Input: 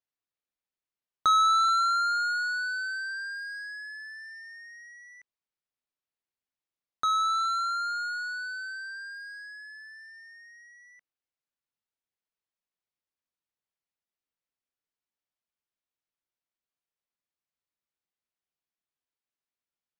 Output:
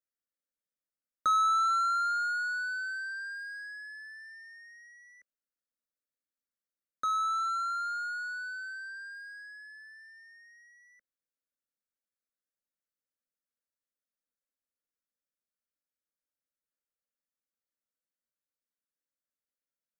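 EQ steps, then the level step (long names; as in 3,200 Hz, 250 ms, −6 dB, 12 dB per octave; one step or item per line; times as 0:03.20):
Butterworth band-reject 830 Hz, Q 1.2
parametric band 550 Hz +7 dB 1.7 octaves
phaser with its sweep stopped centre 580 Hz, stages 8
−3.5 dB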